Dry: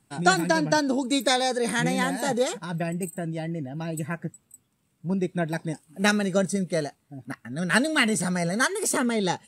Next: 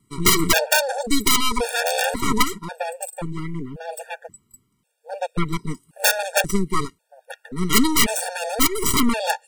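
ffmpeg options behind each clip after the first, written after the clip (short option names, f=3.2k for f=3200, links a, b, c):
-af "aeval=exprs='0.447*(cos(1*acos(clip(val(0)/0.447,-1,1)))-cos(1*PI/2))+0.126*(cos(8*acos(clip(val(0)/0.447,-1,1)))-cos(8*PI/2))':c=same,aeval=exprs='(mod(2.37*val(0)+1,2)-1)/2.37':c=same,afftfilt=real='re*gt(sin(2*PI*0.93*pts/sr)*(1-2*mod(floor(b*sr/1024/470),2)),0)':imag='im*gt(sin(2*PI*0.93*pts/sr)*(1-2*mod(floor(b*sr/1024/470),2)),0)':win_size=1024:overlap=0.75,volume=4dB"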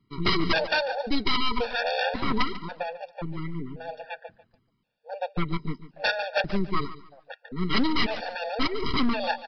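-af "aresample=11025,volume=12dB,asoftclip=hard,volume=-12dB,aresample=44100,aecho=1:1:144|288|432:0.178|0.0462|0.012,volume=-4.5dB"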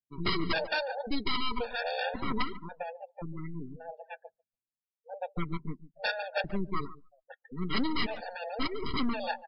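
-af "afftdn=nr=33:nf=-36,volume=-6dB"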